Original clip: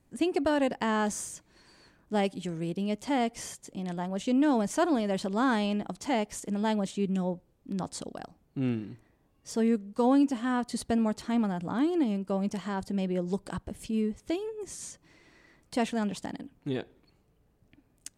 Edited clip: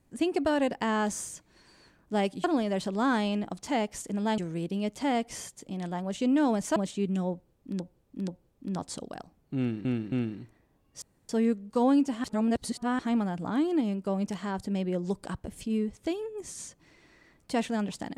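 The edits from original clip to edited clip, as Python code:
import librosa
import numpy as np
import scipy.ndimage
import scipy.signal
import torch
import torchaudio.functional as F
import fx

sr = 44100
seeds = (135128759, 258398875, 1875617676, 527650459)

y = fx.edit(x, sr, fx.move(start_s=4.82, length_s=1.94, to_s=2.44),
    fx.repeat(start_s=7.32, length_s=0.48, count=3),
    fx.repeat(start_s=8.62, length_s=0.27, count=3),
    fx.insert_room_tone(at_s=9.52, length_s=0.27),
    fx.reverse_span(start_s=10.47, length_s=0.75), tone=tone)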